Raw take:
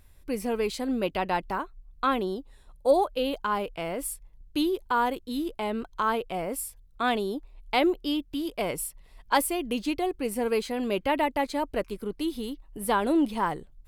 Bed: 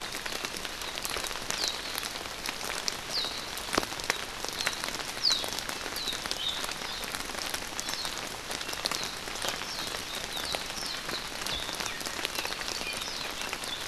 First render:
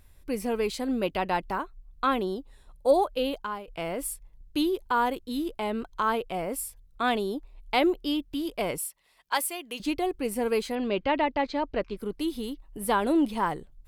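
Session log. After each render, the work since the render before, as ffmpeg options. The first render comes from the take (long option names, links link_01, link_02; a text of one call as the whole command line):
ffmpeg -i in.wav -filter_complex "[0:a]asettb=1/sr,asplit=3[link_01][link_02][link_03];[link_01]atrim=end=8.784[link_04];[link_02]atrim=start=8.78:end=9.8,asetpts=PTS-STARTPTS,afade=type=in:duration=0.004:curve=qsin,afade=type=out:start_time=1.016:duration=0.004:curve=qsin,highpass=frequency=1200:poles=1[link_05];[link_03]atrim=start=9.796[link_06];[link_04][link_05]acrossfade=duration=0.004:curve1=hsin:curve2=qsin[link_07];[link_07][link_06]acrossfade=duration=0.004:curve1=qsin:curve2=hsin,asettb=1/sr,asplit=3[link_08][link_09][link_10];[link_08]atrim=end=10.754[link_11];[link_09]atrim=start=10.75:end=11.97,asetpts=PTS-STARTPTS,afade=type=in:duration=0.004:curve=qsin,afade=type=out:start_time=1.216:duration=0.004:curve=qsin,lowpass=frequency=5200:width=0.5412,lowpass=frequency=5200:width=1.3066[link_12];[link_10]atrim=start=11.966[link_13];[link_11][link_12]acrossfade=duration=0.004:curve1=hsin:curve2=qsin[link_14];[link_14][link_13]acrossfade=duration=0.004:curve1=qsin:curve2=hsin,asplit=2[link_15][link_16];[link_15]atrim=end=3.68,asetpts=PTS-STARTPTS,afade=type=out:start_time=3.25:duration=0.43:silence=0.158489[link_17];[link_16]atrim=start=3.68,asetpts=PTS-STARTPTS,afade=type=in:duration=0.004:curve=hsin:silence=0.158489[link_18];[link_17][link_18]concat=n=2:v=0:a=1" out.wav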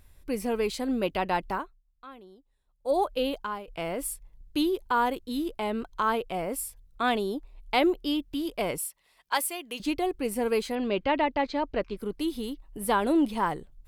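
ffmpeg -i in.wav -filter_complex "[0:a]asplit=3[link_01][link_02][link_03];[link_01]atrim=end=1.79,asetpts=PTS-STARTPTS,afade=type=out:start_time=1.54:duration=0.25:silence=0.0891251[link_04];[link_02]atrim=start=1.79:end=2.79,asetpts=PTS-STARTPTS,volume=-21dB[link_05];[link_03]atrim=start=2.79,asetpts=PTS-STARTPTS,afade=type=in:duration=0.25:silence=0.0891251[link_06];[link_04][link_05][link_06]concat=n=3:v=0:a=1" out.wav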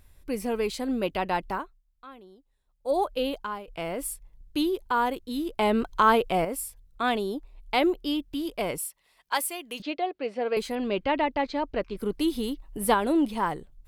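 ffmpeg -i in.wav -filter_complex "[0:a]asettb=1/sr,asplit=3[link_01][link_02][link_03];[link_01]atrim=end=5.584[link_04];[link_02]atrim=start=5.58:end=6.45,asetpts=PTS-STARTPTS,afade=type=in:duration=0.004:curve=qsin,afade=type=out:start_time=0.866:duration=0.004:curve=qsin,acontrast=76[link_05];[link_03]atrim=start=6.446[link_06];[link_04][link_05]acrossfade=duration=0.004:curve1=hsin:curve2=qsin[link_07];[link_07][link_06]acrossfade=duration=0.004:curve1=qsin:curve2=hsin,asettb=1/sr,asplit=3[link_08][link_09][link_10];[link_08]atrim=end=9.824[link_11];[link_09]atrim=start=9.82:end=10.57,asetpts=PTS-STARTPTS,afade=type=in:duration=0.004:curve=qsin,afade=type=out:start_time=0.746:duration=0.004:curve=qsin,highpass=340,equalizer=frequency=360:width_type=q:width=4:gain=-4,equalizer=frequency=620:width_type=q:width=4:gain=9,equalizer=frequency=960:width_type=q:width=4:gain=-5,lowpass=frequency=4400:width=0.5412,lowpass=frequency=4400:width=1.3066[link_12];[link_10]atrim=start=10.566[link_13];[link_11][link_12]acrossfade=duration=0.004:curve1=hsin:curve2=qsin[link_14];[link_14][link_13]acrossfade=duration=0.004:curve1=qsin:curve2=hsin,asplit=3[link_15][link_16][link_17];[link_15]atrim=end=11.952[link_18];[link_16]atrim=start=11.948:end=12.942,asetpts=PTS-STARTPTS,volume=4dB[link_19];[link_17]atrim=start=12.938[link_20];[link_18][link_19]acrossfade=duration=0.004:curve1=hsin:curve2=hsin[link_21];[link_21][link_20]acrossfade=duration=0.004:curve1=hsin:curve2=hsin" out.wav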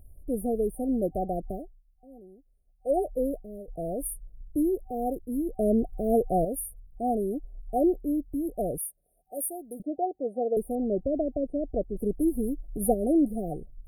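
ffmpeg -i in.wav -af "lowshelf=frequency=120:gain=7,afftfilt=real='re*(1-between(b*sr/4096,760,8700))':imag='im*(1-between(b*sr/4096,760,8700))':win_size=4096:overlap=0.75" out.wav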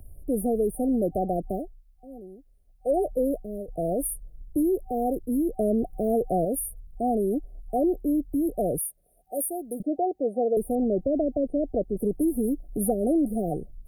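ffmpeg -i in.wav -filter_complex "[0:a]acrossover=split=120|600[link_01][link_02][link_03];[link_01]acompressor=threshold=-45dB:ratio=4[link_04];[link_02]acompressor=threshold=-26dB:ratio=4[link_05];[link_03]acompressor=threshold=-33dB:ratio=4[link_06];[link_04][link_05][link_06]amix=inputs=3:normalize=0,asplit=2[link_07][link_08];[link_08]alimiter=level_in=3dB:limit=-24dB:level=0:latency=1:release=12,volume=-3dB,volume=1dB[link_09];[link_07][link_09]amix=inputs=2:normalize=0" out.wav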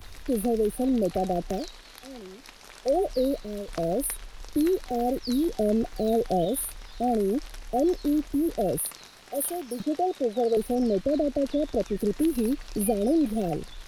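ffmpeg -i in.wav -i bed.wav -filter_complex "[1:a]volume=-13.5dB[link_01];[0:a][link_01]amix=inputs=2:normalize=0" out.wav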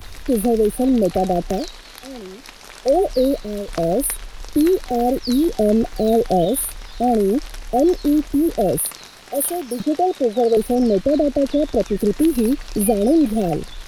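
ffmpeg -i in.wav -af "volume=8dB" out.wav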